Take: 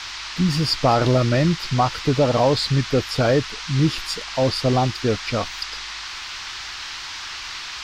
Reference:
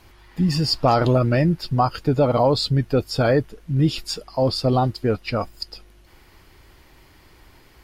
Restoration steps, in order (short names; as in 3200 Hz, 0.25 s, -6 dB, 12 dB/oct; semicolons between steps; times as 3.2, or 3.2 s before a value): noise print and reduce 18 dB